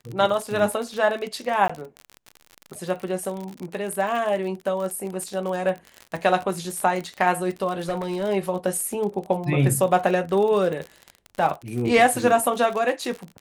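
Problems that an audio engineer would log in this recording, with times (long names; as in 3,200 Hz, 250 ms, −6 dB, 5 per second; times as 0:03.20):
surface crackle 43 per second −28 dBFS
0:01.68–0:01.70: drop-out 15 ms
0:07.79–0:08.24: clipping −21 dBFS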